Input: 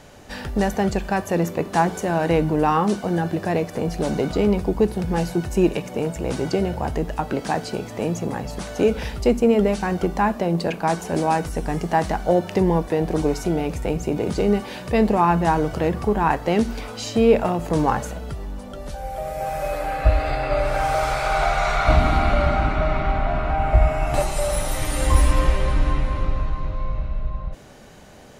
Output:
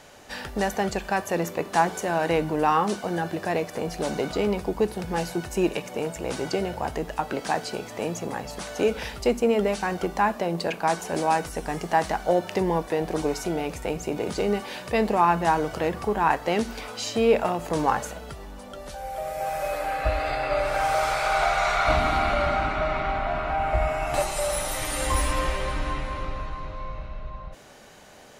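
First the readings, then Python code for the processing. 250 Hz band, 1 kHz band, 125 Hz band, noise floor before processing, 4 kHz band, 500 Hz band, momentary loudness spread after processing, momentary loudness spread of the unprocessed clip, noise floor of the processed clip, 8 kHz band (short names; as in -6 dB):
-7.0 dB, -1.5 dB, -9.5 dB, -36 dBFS, 0.0 dB, -3.5 dB, 11 LU, 10 LU, -41 dBFS, 0.0 dB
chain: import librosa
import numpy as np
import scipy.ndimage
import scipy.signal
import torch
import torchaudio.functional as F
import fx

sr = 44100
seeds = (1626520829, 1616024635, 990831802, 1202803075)

y = fx.low_shelf(x, sr, hz=330.0, db=-11.0)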